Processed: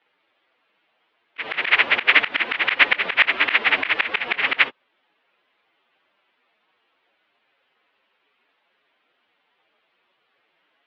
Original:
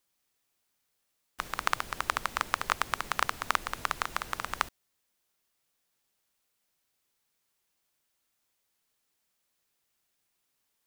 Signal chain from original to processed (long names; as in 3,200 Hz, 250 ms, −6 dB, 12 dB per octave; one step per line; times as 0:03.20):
phase-vocoder pitch shift without resampling +11.5 semitones
single-sideband voice off tune −200 Hz 520–3,400 Hz
volume swells 146 ms
boost into a limiter +27.5 dB
level −1 dB